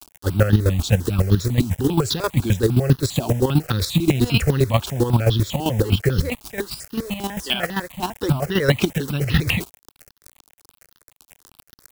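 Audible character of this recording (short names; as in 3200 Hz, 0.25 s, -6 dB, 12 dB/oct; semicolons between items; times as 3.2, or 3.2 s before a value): a quantiser's noise floor 6-bit, dither none; chopped level 7.6 Hz, depth 65%, duty 25%; notches that jump at a steady rate 10 Hz 510–2300 Hz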